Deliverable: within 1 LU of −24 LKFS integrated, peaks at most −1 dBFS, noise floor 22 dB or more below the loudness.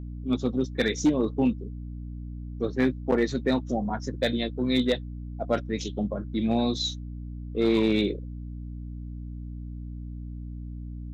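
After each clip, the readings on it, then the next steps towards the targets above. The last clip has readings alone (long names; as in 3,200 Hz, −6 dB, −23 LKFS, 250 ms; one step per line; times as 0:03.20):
share of clipped samples 0.3%; peaks flattened at −15.0 dBFS; mains hum 60 Hz; hum harmonics up to 300 Hz; level of the hum −34 dBFS; integrated loudness −27.0 LKFS; sample peak −15.0 dBFS; target loudness −24.0 LKFS
→ clipped peaks rebuilt −15 dBFS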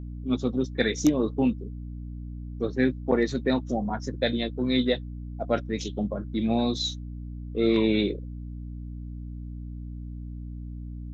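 share of clipped samples 0.0%; mains hum 60 Hz; hum harmonics up to 300 Hz; level of the hum −34 dBFS
→ mains-hum notches 60/120/180/240/300 Hz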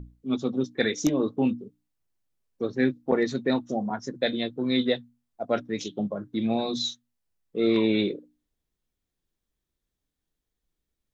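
mains hum none found; integrated loudness −27.5 LKFS; sample peak −7.0 dBFS; target loudness −24.0 LKFS
→ level +3.5 dB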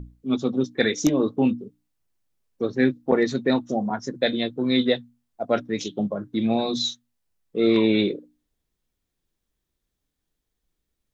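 integrated loudness −24.0 LKFS; sample peak −3.5 dBFS; background noise floor −81 dBFS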